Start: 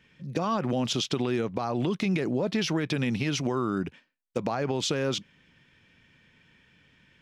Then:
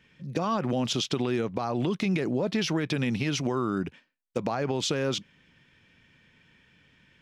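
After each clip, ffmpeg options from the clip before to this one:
-af anull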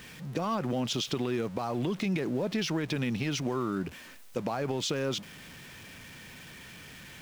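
-af "aeval=exprs='val(0)+0.5*0.0112*sgn(val(0))':c=same,volume=0.631"

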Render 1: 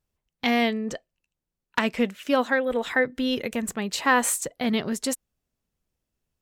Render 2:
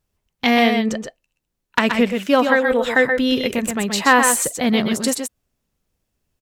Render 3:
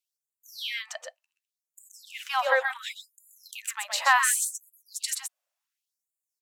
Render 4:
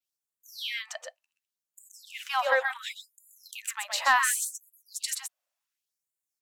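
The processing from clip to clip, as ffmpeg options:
-af "aecho=1:1:118|128:0.168|0.501,volume=2.11"
-af "afftfilt=real='re*gte(b*sr/1024,490*pow(6900/490,0.5+0.5*sin(2*PI*0.69*pts/sr)))':imag='im*gte(b*sr/1024,490*pow(6900/490,0.5+0.5*sin(2*PI*0.69*pts/sr)))':win_size=1024:overlap=0.75,volume=0.501"
-af "adynamicequalizer=threshold=0.00708:dfrequency=8700:dqfactor=1.4:tfrequency=8700:tqfactor=1.4:attack=5:release=100:ratio=0.375:range=2:mode=cutabove:tftype=bell,acontrast=57,volume=0.447"

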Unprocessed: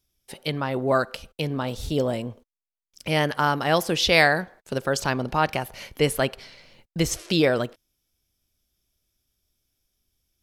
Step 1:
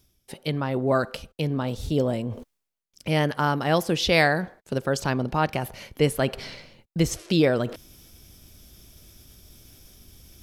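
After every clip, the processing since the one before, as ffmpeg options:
-af "equalizer=f=150:w=0.32:g=6,areverse,acompressor=mode=upward:threshold=0.0631:ratio=2.5,areverse,volume=0.668"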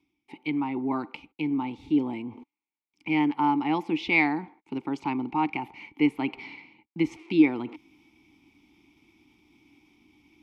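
-filter_complex "[0:a]asplit=3[s0][s1][s2];[s0]bandpass=f=300:t=q:w=8,volume=1[s3];[s1]bandpass=f=870:t=q:w=8,volume=0.501[s4];[s2]bandpass=f=2240:t=q:w=8,volume=0.355[s5];[s3][s4][s5]amix=inputs=3:normalize=0,acrossover=split=530|2500[s6][s7][s8];[s7]crystalizer=i=9.5:c=0[s9];[s6][s9][s8]amix=inputs=3:normalize=0,volume=2.24"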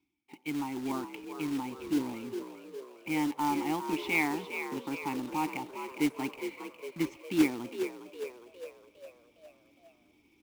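-filter_complex "[0:a]acrusher=bits=3:mode=log:mix=0:aa=0.000001,asplit=7[s0][s1][s2][s3][s4][s5][s6];[s1]adelay=409,afreqshift=59,volume=0.355[s7];[s2]adelay=818,afreqshift=118,volume=0.191[s8];[s3]adelay=1227,afreqshift=177,volume=0.104[s9];[s4]adelay=1636,afreqshift=236,volume=0.0556[s10];[s5]adelay=2045,afreqshift=295,volume=0.0302[s11];[s6]adelay=2454,afreqshift=354,volume=0.0162[s12];[s0][s7][s8][s9][s10][s11][s12]amix=inputs=7:normalize=0,volume=0.473"

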